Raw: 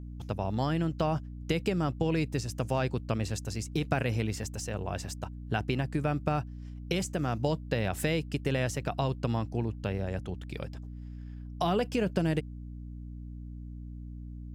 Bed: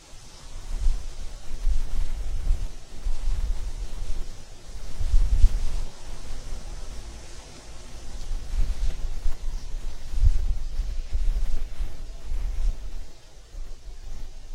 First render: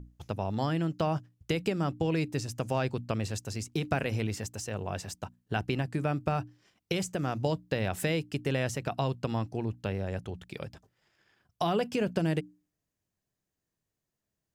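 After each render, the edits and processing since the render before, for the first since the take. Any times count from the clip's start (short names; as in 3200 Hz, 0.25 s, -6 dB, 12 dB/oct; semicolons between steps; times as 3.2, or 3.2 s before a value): notches 60/120/180/240/300 Hz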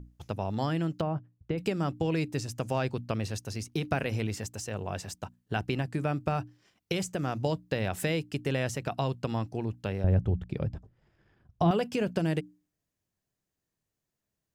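1.01–1.58 tape spacing loss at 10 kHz 44 dB; 2.91–4.11 notch 7500 Hz, Q 6.9; 10.04–11.71 tilt -4 dB/oct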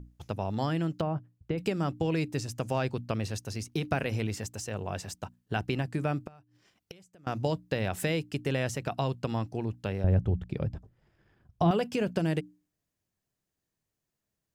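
6.2–7.27 flipped gate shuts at -29 dBFS, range -25 dB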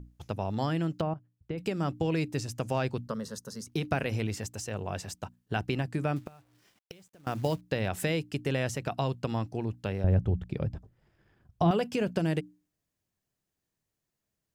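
1.14–1.88 fade in, from -13 dB; 3.07–3.67 fixed phaser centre 490 Hz, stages 8; 6.16–7.61 companded quantiser 6-bit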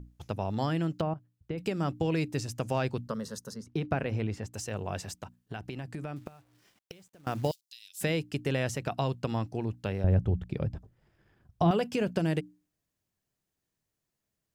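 3.54–4.53 LPF 1700 Hz 6 dB/oct; 5.08–6.26 compressor 4:1, threshold -35 dBFS; 7.51–8.01 inverse Chebyshev high-pass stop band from 1200 Hz, stop band 60 dB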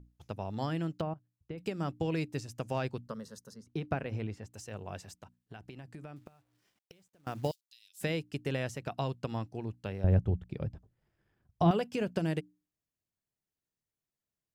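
upward expander 1.5:1, over -39 dBFS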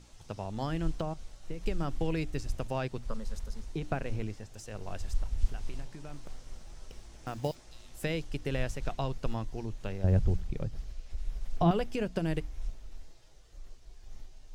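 add bed -11.5 dB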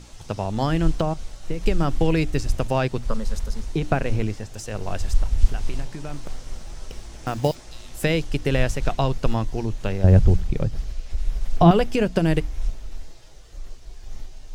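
gain +11.5 dB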